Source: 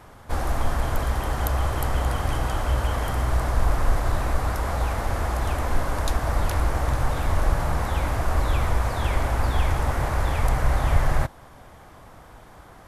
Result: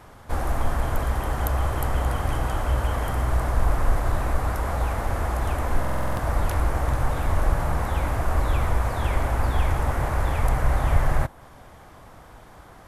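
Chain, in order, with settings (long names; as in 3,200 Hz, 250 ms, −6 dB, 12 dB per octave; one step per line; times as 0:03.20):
dynamic equaliser 4,700 Hz, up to −5 dB, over −51 dBFS, Q 0.89
buffer that repeats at 0:05.80, samples 2,048, times 7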